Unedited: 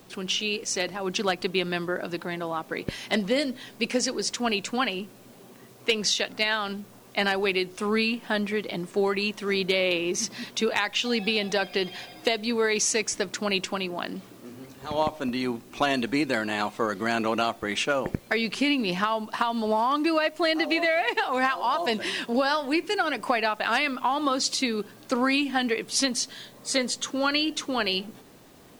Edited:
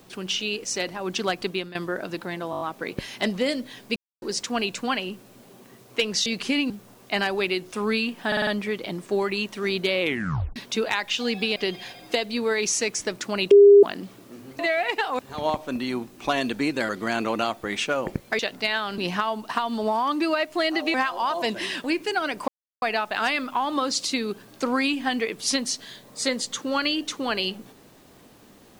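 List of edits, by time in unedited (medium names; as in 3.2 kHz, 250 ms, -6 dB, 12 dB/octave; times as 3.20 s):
1.49–1.75 s: fade out, to -16 dB
2.51 s: stutter 0.02 s, 6 plays
3.86–4.12 s: mute
6.16–6.75 s: swap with 18.38–18.82 s
8.32 s: stutter 0.05 s, 5 plays
9.86 s: tape stop 0.55 s
11.41–11.69 s: delete
13.64–13.96 s: bleep 404 Hz -7.5 dBFS
16.42–16.88 s: delete
20.78–21.38 s: move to 14.72 s
22.28–22.67 s: delete
23.31 s: insert silence 0.34 s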